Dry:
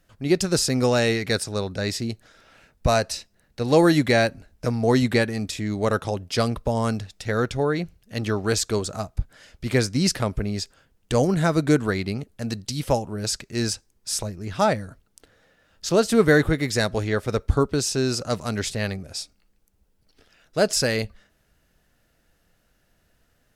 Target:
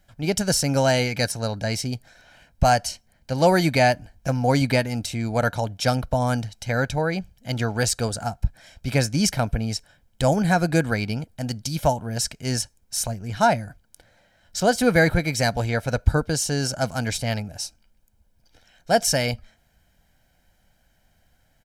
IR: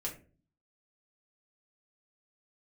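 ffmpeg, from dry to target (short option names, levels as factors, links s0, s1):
-af "asetrate=48000,aresample=44100,aecho=1:1:1.3:0.51"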